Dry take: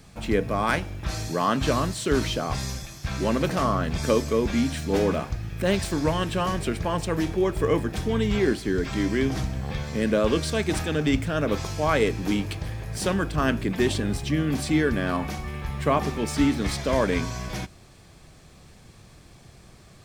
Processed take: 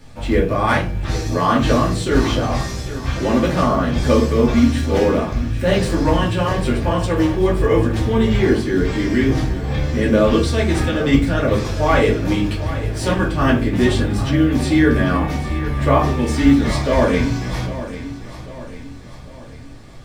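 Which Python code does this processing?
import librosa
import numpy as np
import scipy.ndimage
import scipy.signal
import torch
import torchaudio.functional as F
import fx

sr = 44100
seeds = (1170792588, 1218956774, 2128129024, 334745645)

y = fx.high_shelf(x, sr, hz=6400.0, db=-6.5)
y = fx.echo_feedback(y, sr, ms=796, feedback_pct=48, wet_db=-13.5)
y = fx.room_shoebox(y, sr, seeds[0], volume_m3=170.0, walls='furnished', distance_m=2.5)
y = fx.quant_float(y, sr, bits=6)
y = F.gain(torch.from_numpy(y), 1.0).numpy()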